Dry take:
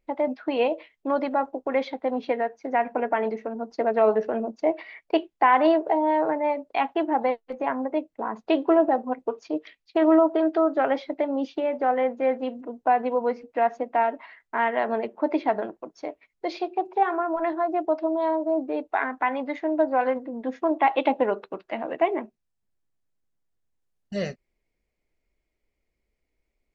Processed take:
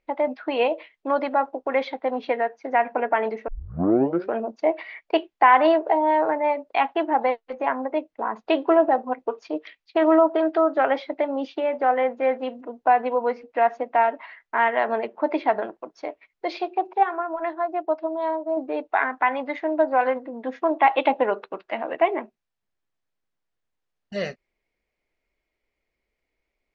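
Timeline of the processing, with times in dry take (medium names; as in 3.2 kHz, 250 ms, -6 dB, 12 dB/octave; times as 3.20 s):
3.48 s: tape start 0.87 s
16.93–18.57 s: upward expansion, over -33 dBFS
whole clip: Bessel low-pass 3.8 kHz, order 2; bass shelf 400 Hz -11 dB; trim +5.5 dB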